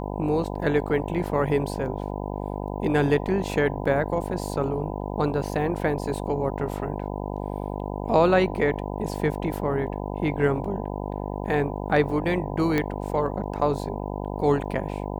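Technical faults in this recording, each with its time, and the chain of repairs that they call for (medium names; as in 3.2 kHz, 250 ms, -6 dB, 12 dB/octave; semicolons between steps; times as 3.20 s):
buzz 50 Hz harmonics 20 -31 dBFS
12.78 s: pop -11 dBFS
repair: de-click; de-hum 50 Hz, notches 20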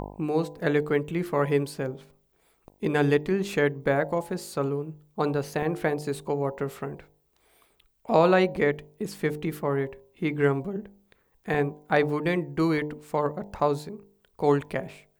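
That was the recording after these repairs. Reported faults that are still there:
nothing left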